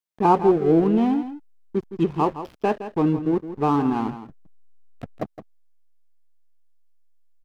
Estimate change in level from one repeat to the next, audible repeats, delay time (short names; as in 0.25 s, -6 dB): no steady repeat, 1, 0.165 s